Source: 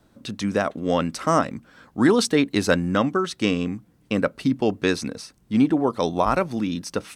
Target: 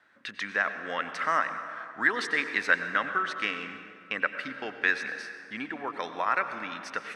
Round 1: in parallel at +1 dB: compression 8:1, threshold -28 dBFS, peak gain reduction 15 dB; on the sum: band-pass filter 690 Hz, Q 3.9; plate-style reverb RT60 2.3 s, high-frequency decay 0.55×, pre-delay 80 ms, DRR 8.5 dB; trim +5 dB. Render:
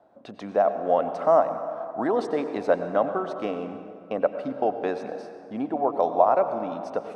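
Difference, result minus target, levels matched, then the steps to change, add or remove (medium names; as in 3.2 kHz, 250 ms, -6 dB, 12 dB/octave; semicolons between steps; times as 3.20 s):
2 kHz band -19.0 dB
change: band-pass filter 1.8 kHz, Q 3.9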